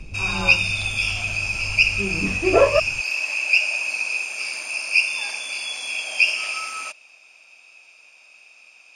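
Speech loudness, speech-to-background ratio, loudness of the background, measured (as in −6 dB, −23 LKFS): −23.0 LKFS, −2.0 dB, −21.0 LKFS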